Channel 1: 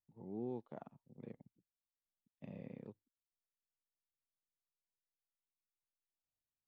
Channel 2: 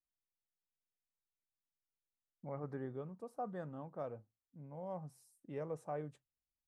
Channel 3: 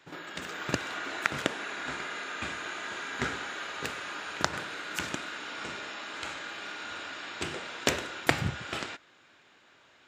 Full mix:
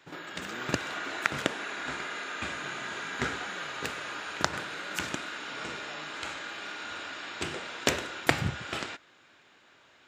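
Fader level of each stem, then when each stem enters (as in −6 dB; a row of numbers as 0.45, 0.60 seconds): −5.0, −9.0, +0.5 decibels; 0.15, 0.00, 0.00 seconds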